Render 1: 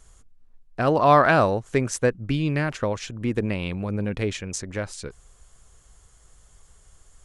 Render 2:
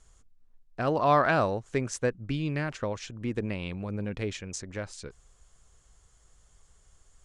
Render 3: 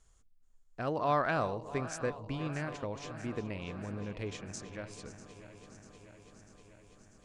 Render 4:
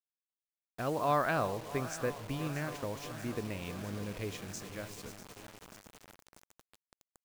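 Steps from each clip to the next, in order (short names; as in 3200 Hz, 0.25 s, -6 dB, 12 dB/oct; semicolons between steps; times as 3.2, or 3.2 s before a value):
Chebyshev low-pass 7400 Hz, order 2; gain -5.5 dB
regenerating reverse delay 0.322 s, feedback 82%, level -14 dB; gain -7 dB
bit-crush 8-bit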